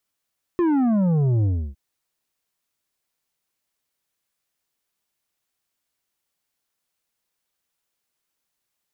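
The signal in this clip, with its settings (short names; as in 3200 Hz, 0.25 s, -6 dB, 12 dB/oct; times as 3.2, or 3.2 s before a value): sub drop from 360 Hz, over 1.16 s, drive 8 dB, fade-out 0.31 s, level -17.5 dB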